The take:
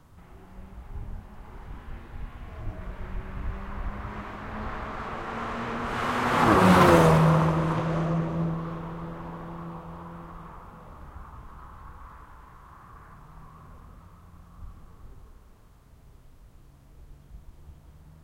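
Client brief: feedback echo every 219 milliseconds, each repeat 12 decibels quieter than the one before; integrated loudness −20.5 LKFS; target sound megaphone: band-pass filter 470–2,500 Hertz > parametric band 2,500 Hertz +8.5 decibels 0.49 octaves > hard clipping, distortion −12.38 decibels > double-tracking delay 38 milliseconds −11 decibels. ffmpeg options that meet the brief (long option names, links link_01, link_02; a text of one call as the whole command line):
ffmpeg -i in.wav -filter_complex "[0:a]highpass=470,lowpass=2500,equalizer=frequency=2500:width_type=o:width=0.49:gain=8.5,aecho=1:1:219|438|657:0.251|0.0628|0.0157,asoftclip=type=hard:threshold=-18dB,asplit=2[link_01][link_02];[link_02]adelay=38,volume=-11dB[link_03];[link_01][link_03]amix=inputs=2:normalize=0,volume=7.5dB" out.wav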